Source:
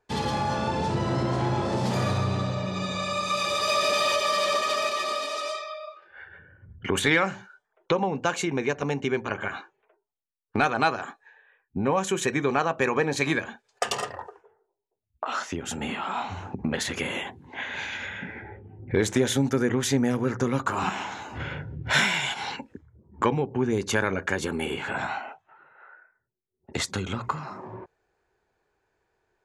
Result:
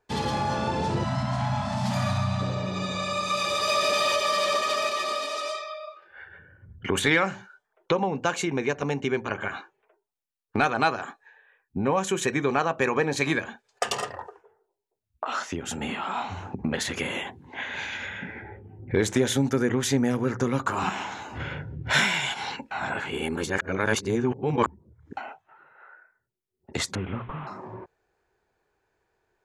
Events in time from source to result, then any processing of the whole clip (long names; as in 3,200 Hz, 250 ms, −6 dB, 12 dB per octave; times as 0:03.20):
0:01.04–0:02.41: time-frequency box erased 260–560 Hz
0:22.71–0:25.17: reverse
0:26.95–0:27.47: linear delta modulator 16 kbit/s, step −42.5 dBFS